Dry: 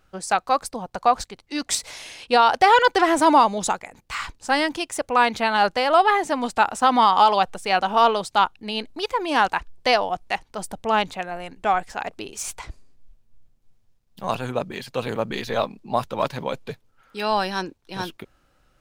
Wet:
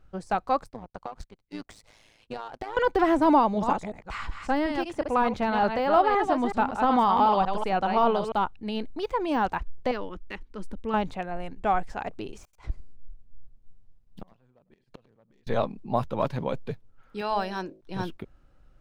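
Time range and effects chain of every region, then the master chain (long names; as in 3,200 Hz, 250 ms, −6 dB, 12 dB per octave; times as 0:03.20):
0:00.64–0:02.77: downward compressor 12 to 1, threshold −22 dBFS + amplitude modulation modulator 110 Hz, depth 45% + power curve on the samples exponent 1.4
0:03.36–0:08.32: delay that plays each chunk backwards 186 ms, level −7 dB + high-shelf EQ 7,100 Hz −6 dB
0:09.91–0:10.94: high-shelf EQ 4,600 Hz −10 dB + phaser with its sweep stopped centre 300 Hz, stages 4
0:12.43–0:15.47: phase distortion by the signal itself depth 0.17 ms + gate with flip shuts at −24 dBFS, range −35 dB + single-tap delay 101 ms −19.5 dB
0:17.21–0:17.81: low-shelf EQ 230 Hz −9.5 dB + hum removal 53.75 Hz, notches 13
whole clip: de-essing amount 75%; spectral tilt −2.5 dB per octave; level −4.5 dB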